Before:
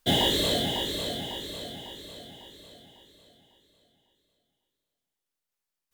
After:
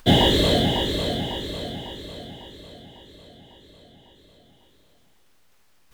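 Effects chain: bass shelf 160 Hz +7 dB; upward compressor, threshold -46 dBFS; treble shelf 5.1 kHz -11 dB; trim +7 dB

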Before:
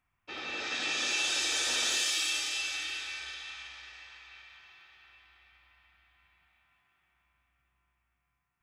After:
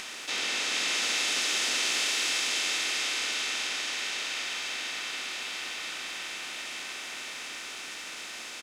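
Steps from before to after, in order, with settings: spectral levelling over time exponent 0.2; peaking EQ 89 Hz -11 dB 1.5 oct; harmony voices -4 st -5 dB, -3 st -7 dB, +5 st -13 dB; trim -5 dB

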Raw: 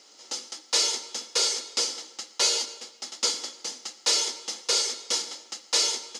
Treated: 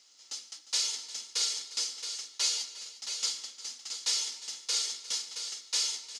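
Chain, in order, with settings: amplifier tone stack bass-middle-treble 5-5-5; harmony voices -3 st -12 dB; on a send: multi-tap echo 354/672 ms -16.5/-7.5 dB

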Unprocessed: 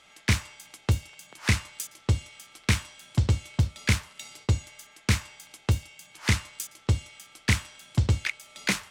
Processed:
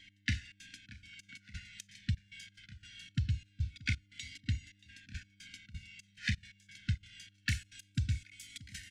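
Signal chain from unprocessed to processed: low-pass 4.5 kHz 12 dB/octave, from 7.49 s 11 kHz; compression 5:1, threshold -32 dBFS, peak gain reduction 13.5 dB; trance gate "x..xxx.xxx..xx." 175 bpm -24 dB; mains buzz 100 Hz, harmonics 11, -67 dBFS -2 dB/octave; brick-wall FIR band-stop 300–1400 Hz; feedback delay 630 ms, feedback 40%, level -20.5 dB; Shepard-style flanger falling 0.23 Hz; trim +5 dB

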